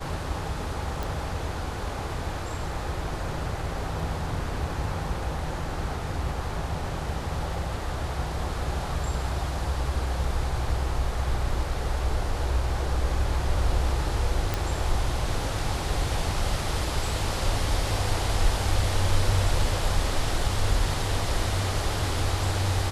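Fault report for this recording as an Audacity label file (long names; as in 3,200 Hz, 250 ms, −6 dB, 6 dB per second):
1.030000	1.030000	click
14.540000	14.540000	click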